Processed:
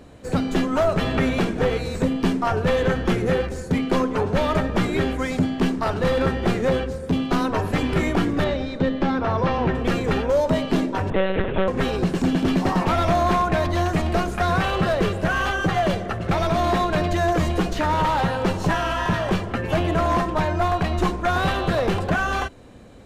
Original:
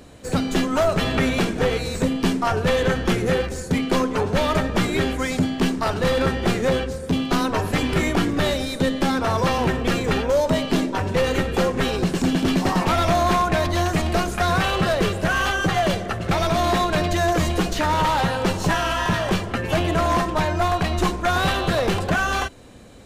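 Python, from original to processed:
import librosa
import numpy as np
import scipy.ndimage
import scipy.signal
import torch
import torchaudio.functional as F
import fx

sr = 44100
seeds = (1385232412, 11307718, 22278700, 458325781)

y = fx.air_absorb(x, sr, metres=150.0, at=(8.44, 9.75))
y = fx.lpc_monotone(y, sr, seeds[0], pitch_hz=190.0, order=10, at=(11.1, 11.68))
y = fx.high_shelf(y, sr, hz=3100.0, db=-8.5)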